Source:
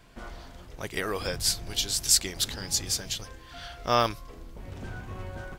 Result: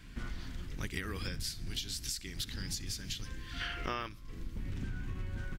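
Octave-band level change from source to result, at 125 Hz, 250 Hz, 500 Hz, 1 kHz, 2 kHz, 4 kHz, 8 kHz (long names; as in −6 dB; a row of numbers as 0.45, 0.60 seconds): −2.0, −4.5, −15.0, −13.5, −5.5, −10.5, −15.5 decibels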